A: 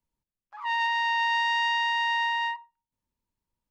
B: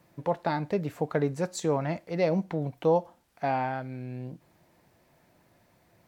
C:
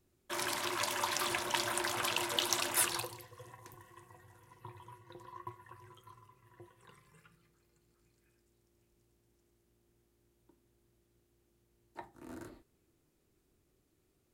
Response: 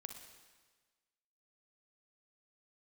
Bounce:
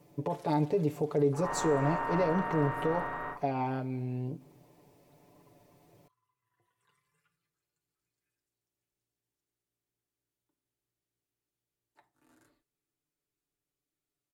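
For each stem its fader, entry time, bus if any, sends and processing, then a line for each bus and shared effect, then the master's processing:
+1.5 dB, 0.80 s, no send, compressing power law on the bin magnitudes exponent 0.29; low-pass filter 1,200 Hz 24 dB per octave; pitch vibrato 0.49 Hz 10 cents
−2.5 dB, 0.00 s, send −7 dB, graphic EQ with 15 bands 400 Hz +8 dB, 1,600 Hz −11 dB, 4,000 Hz −3 dB; brickwall limiter −21.5 dBFS, peak gain reduction 11.5 dB
−17.0 dB, 0.00 s, no send, downward compressor 3 to 1, threshold −43 dBFS, peak gain reduction 13.5 dB; tilt shelving filter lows −4.5 dB, about 770 Hz; automatic ducking −10 dB, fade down 1.30 s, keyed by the second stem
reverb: on, RT60 1.4 s, pre-delay 39 ms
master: comb filter 6.9 ms

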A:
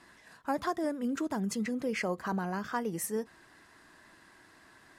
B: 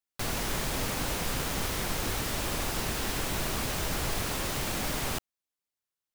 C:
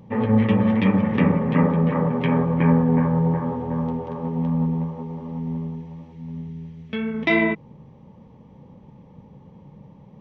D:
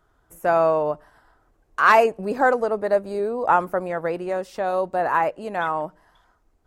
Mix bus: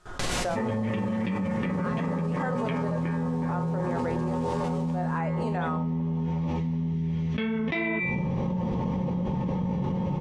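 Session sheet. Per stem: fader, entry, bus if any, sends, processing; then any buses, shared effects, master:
−16.5 dB, 1.90 s, no send, bit reduction 4 bits
−3.5 dB, 0.00 s, no send, brickwall limiter −26.5 dBFS, peak gain reduction 8 dB; automatic ducking −10 dB, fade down 0.65 s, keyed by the fourth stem
+0.5 dB, 0.45 s, no send, brickwall limiter −14 dBFS, peak gain reduction 7.5 dB
−4.5 dB, 0.00 s, no send, noise gate with hold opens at −54 dBFS; amplitude tremolo 0.76 Hz, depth 85%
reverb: not used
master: low-pass filter 8,900 Hz 24 dB per octave; tuned comb filter 180 Hz, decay 0.43 s, harmonics all, mix 80%; envelope flattener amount 100%

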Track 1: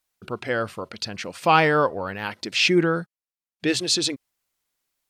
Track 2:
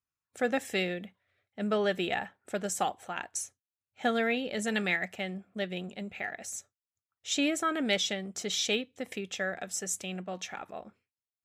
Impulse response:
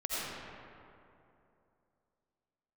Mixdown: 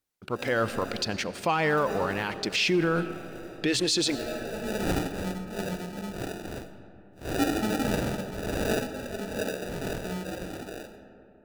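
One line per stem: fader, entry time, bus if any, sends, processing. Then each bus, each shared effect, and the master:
−6.5 dB, 0.00 s, send −23.5 dB, leveller curve on the samples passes 1; automatic gain control
+1.5 dB, 0.00 s, send −15 dB, random phases in long frames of 200 ms; decimation without filtering 41×; automatic ducking −20 dB, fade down 0.30 s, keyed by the first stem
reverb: on, RT60 2.8 s, pre-delay 45 ms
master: brickwall limiter −17 dBFS, peak gain reduction 10 dB

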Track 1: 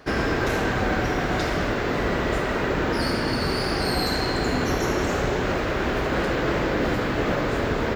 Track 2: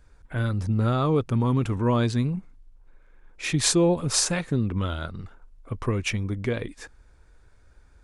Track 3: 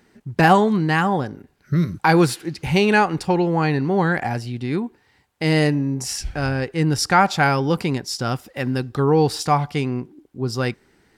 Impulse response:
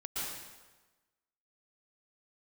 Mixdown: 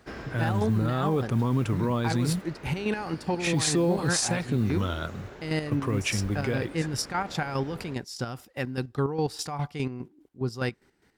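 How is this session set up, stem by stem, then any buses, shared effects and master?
−12.5 dB, 0.00 s, no send, automatic ducking −9 dB, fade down 0.50 s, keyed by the third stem
+0.5 dB, 0.00 s, no send, noise that follows the level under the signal 34 dB; high-pass filter 84 Hz 24 dB per octave
−5.0 dB, 0.00 s, no send, brickwall limiter −13 dBFS, peak gain reduction 10 dB; square-wave tremolo 4.9 Hz, depth 60%, duty 40%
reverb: not used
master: brickwall limiter −16 dBFS, peak gain reduction 7.5 dB

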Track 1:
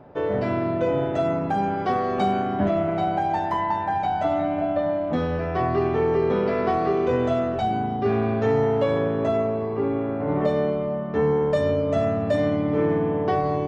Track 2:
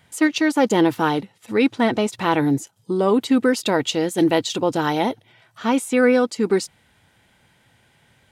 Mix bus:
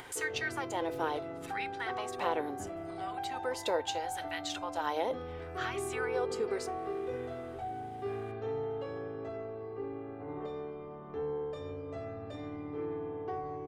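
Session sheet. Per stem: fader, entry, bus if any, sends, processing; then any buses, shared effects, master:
−11.0 dB, 0.00 s, no send, comb filter 2.5 ms, depth 71%
+2.0 dB, 0.00 s, no send, downward compressor 3 to 1, threshold −30 dBFS, peak gain reduction 14 dB; auto-filter high-pass sine 0.74 Hz 480–1,700 Hz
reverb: not used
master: tuned comb filter 520 Hz, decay 0.23 s, harmonics all, mix 60%; upward compression, threshold −39 dBFS

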